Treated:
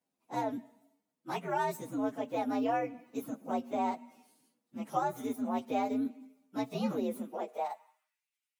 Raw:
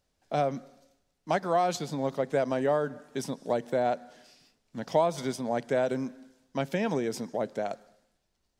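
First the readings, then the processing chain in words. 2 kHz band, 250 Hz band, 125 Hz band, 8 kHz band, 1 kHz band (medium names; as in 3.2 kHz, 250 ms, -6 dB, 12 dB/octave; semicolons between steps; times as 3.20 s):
-6.5 dB, -1.0 dB, -10.0 dB, -9.5 dB, -2.5 dB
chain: frequency axis rescaled in octaves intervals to 123%; high-pass sweep 230 Hz -> 2.3 kHz, 7.18–8.29 s; trim -5 dB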